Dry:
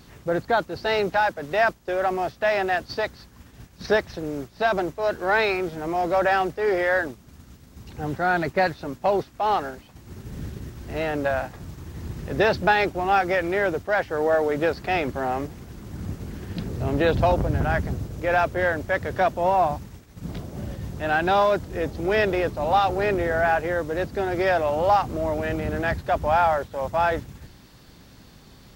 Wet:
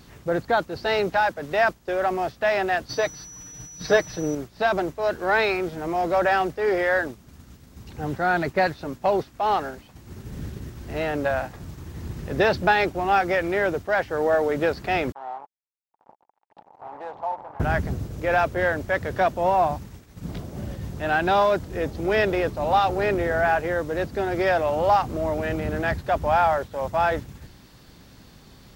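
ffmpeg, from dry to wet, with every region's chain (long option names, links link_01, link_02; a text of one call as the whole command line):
ffmpeg -i in.wav -filter_complex "[0:a]asettb=1/sr,asplit=3[link_01][link_02][link_03];[link_01]atrim=end=2.894[link_04];[link_02]atrim=start=2.89:end=4.35,asetpts=PTS-STARTPTS,afade=type=in:duration=0.004:curve=qsin,afade=type=out:start_time=1.456:duration=0.004:curve=qsin,aecho=1:1:6.5:0.71,atrim=end_sample=64386,aeval=exprs='val(0)+0.01*sin(2*PI*5900*n/s)':channel_layout=same[link_05];[link_03]atrim=start=4.346[link_06];[link_04][link_05]acrossfade=duration=0.004:curve1=hsin:curve2=qsin[link_07];[link_07][link_06]acrossfade=duration=0.004:curve1=qsin:curve2=hsin,asettb=1/sr,asplit=3[link_08][link_09][link_10];[link_08]atrim=end=15.124[link_11];[link_09]atrim=start=15.12:end=17.6,asetpts=PTS-STARTPTS,afade=type=in:duration=0.004:curve=qsin,afade=type=out:start_time=2.476:duration=0.004:curve=qsin,acrusher=bits=3:mix=0:aa=0.5,bandpass=frequency=860:width_type=q:width=6.5[link_12];[link_10]atrim=start=17.596[link_13];[link_11][link_12]acrossfade=duration=0.004:curve1=hsin:curve2=qsin[link_14];[link_14][link_13]acrossfade=duration=0.004:curve1=qsin:curve2=hsin" out.wav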